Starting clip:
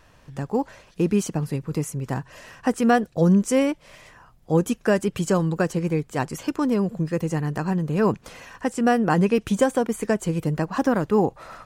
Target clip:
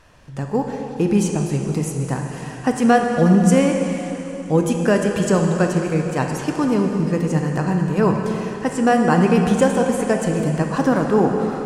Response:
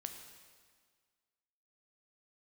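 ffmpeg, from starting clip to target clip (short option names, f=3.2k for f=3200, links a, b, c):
-filter_complex "[1:a]atrim=start_sample=2205,asetrate=22050,aresample=44100[a];[0:a][a]afir=irnorm=-1:irlink=0,volume=3dB"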